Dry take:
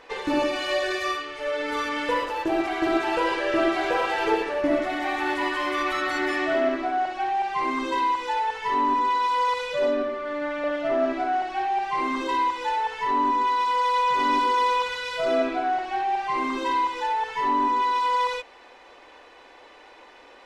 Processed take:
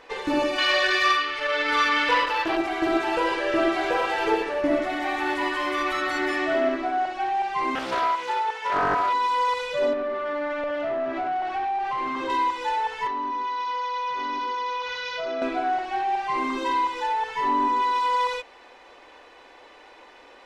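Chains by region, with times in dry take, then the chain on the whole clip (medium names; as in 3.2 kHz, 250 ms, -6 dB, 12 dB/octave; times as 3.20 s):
0.58–2.57 s: high-order bell 2.3 kHz +9 dB 2.7 oct + transformer saturation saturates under 1.2 kHz
7.75–9.13 s: high-pass 340 Hz + loudspeaker Doppler distortion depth 0.47 ms
9.93–12.30 s: compression 4:1, threshold -26 dBFS + overdrive pedal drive 14 dB, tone 1.4 kHz, clips at -19 dBFS
13.07–15.42 s: steep low-pass 6.5 kHz 96 dB/octave + bass shelf 350 Hz -5.5 dB + compression 5:1, threshold -26 dBFS
whole clip: none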